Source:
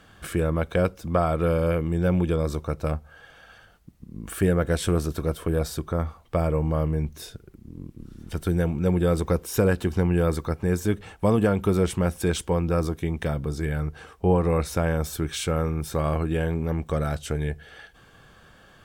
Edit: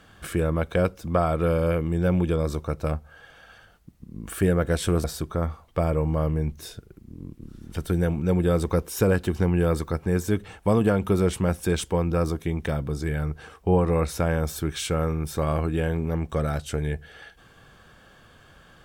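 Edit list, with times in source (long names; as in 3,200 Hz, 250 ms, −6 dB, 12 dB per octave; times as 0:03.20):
0:05.04–0:05.61: remove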